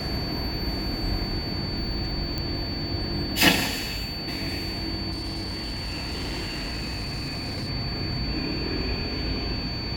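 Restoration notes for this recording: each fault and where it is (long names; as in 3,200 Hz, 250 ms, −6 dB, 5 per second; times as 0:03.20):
whistle 4,500 Hz −33 dBFS
0:02.38: click −15 dBFS
0:05.11–0:07.70: clipping −27.5 dBFS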